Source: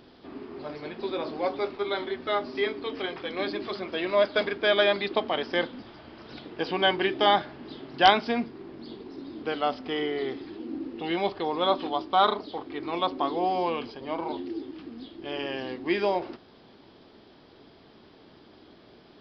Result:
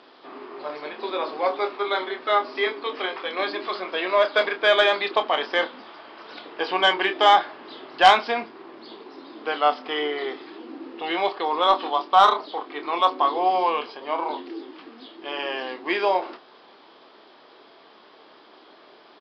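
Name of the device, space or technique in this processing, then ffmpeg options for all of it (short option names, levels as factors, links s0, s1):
intercom: -filter_complex "[0:a]highpass=490,lowpass=4900,equalizer=f=1100:t=o:w=0.55:g=4.5,asoftclip=type=tanh:threshold=0.299,asplit=2[s0][s1];[s1]adelay=27,volume=0.355[s2];[s0][s2]amix=inputs=2:normalize=0,volume=1.88"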